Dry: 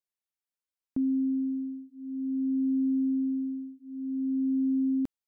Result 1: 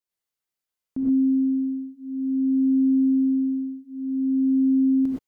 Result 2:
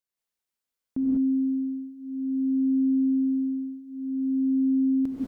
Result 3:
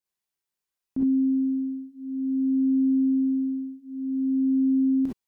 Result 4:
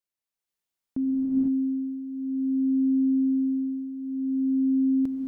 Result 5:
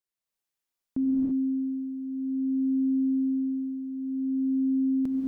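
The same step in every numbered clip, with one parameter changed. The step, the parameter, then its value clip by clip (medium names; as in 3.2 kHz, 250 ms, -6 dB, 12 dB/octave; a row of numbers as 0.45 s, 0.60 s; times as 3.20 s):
gated-style reverb, gate: 140 ms, 220 ms, 80 ms, 530 ms, 360 ms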